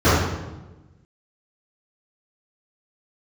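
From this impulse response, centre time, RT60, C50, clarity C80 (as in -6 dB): 83 ms, 1.1 s, -2.0 dB, 2.0 dB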